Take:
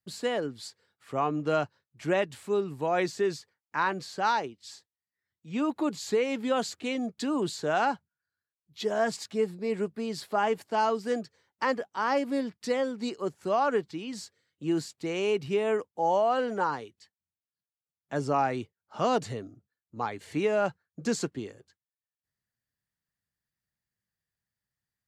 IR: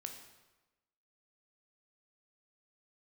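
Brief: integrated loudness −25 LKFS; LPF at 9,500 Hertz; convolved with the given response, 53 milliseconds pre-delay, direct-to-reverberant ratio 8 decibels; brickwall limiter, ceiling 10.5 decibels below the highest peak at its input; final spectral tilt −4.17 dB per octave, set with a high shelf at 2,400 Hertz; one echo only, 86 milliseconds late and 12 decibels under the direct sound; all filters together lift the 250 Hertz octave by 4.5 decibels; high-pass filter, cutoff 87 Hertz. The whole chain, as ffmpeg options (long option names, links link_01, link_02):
-filter_complex "[0:a]highpass=87,lowpass=9500,equalizer=frequency=250:width_type=o:gain=5.5,highshelf=frequency=2400:gain=8,alimiter=limit=-22dB:level=0:latency=1,aecho=1:1:86:0.251,asplit=2[link_01][link_02];[1:a]atrim=start_sample=2205,adelay=53[link_03];[link_02][link_03]afir=irnorm=-1:irlink=0,volume=-5dB[link_04];[link_01][link_04]amix=inputs=2:normalize=0,volume=6dB"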